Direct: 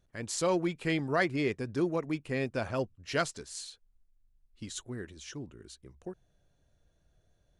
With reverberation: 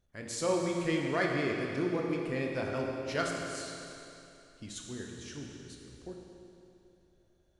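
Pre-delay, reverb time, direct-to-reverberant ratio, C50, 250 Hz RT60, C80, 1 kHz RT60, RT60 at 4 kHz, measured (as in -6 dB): 17 ms, 2.9 s, -0.5 dB, 1.0 dB, 2.9 s, 2.0 dB, 2.9 s, 2.7 s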